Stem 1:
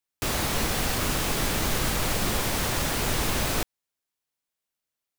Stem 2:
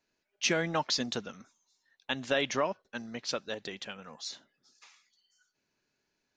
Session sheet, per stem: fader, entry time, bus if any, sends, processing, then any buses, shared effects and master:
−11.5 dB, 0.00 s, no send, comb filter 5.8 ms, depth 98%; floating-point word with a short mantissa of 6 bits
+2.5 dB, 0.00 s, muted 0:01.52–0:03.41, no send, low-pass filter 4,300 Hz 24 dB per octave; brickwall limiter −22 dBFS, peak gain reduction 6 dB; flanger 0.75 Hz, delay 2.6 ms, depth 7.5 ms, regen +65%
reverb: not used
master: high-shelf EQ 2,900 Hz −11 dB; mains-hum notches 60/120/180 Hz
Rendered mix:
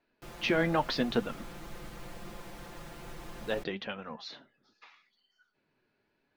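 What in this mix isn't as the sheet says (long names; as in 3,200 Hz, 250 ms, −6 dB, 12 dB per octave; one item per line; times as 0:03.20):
stem 1 −11.5 dB → −20.0 dB
stem 2 +2.5 dB → +11.0 dB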